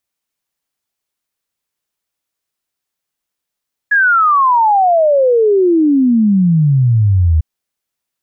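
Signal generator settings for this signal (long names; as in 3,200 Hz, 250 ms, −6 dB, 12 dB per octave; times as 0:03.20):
exponential sine sweep 1,700 Hz → 76 Hz 3.50 s −7.5 dBFS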